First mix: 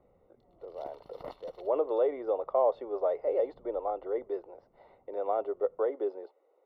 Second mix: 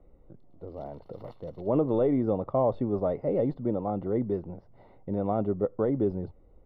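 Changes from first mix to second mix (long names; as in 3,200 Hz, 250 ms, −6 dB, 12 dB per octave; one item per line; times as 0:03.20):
speech: remove Butterworth high-pass 410 Hz 36 dB per octave
background −6.0 dB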